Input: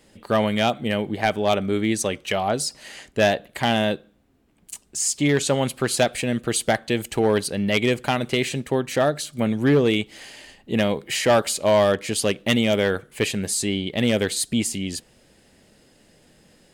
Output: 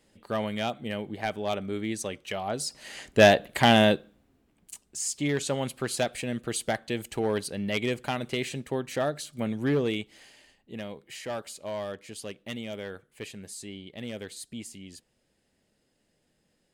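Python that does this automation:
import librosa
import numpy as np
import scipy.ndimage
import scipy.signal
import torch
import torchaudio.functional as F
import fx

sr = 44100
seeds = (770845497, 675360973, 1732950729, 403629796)

y = fx.gain(x, sr, db=fx.line((2.44, -9.5), (3.21, 2.0), (3.83, 2.0), (4.83, -8.0), (9.81, -8.0), (10.78, -17.0)))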